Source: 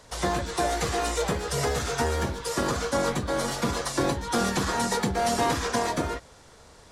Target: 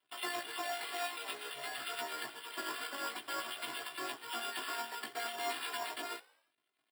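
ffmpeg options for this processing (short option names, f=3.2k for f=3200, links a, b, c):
-filter_complex "[0:a]aderivative,aeval=exprs='sgn(val(0))*max(abs(val(0))-0.00237,0)':c=same,aecho=1:1:2.9:0.91,acompressor=threshold=-38dB:ratio=4,afftfilt=real='re*between(b*sr/4096,110,3700)':imag='im*between(b*sr/4096,110,3700)':win_size=4096:overlap=0.75,flanger=delay=15.5:depth=3.1:speed=0.53,acrossover=split=1700[a][b];[a]aeval=exprs='val(0)*(1-0.5/2+0.5/2*cos(2*PI*9*n/s))':c=same[c];[b]aeval=exprs='val(0)*(1-0.5/2-0.5/2*cos(2*PI*9*n/s))':c=same[d];[c][d]amix=inputs=2:normalize=0,acrusher=samples=7:mix=1:aa=0.000001,asplit=5[e][f][g][h][i];[f]adelay=86,afreqshift=66,volume=-22dB[j];[g]adelay=172,afreqshift=132,volume=-27.8dB[k];[h]adelay=258,afreqshift=198,volume=-33.7dB[l];[i]adelay=344,afreqshift=264,volume=-39.5dB[m];[e][j][k][l][m]amix=inputs=5:normalize=0,volume=13.5dB"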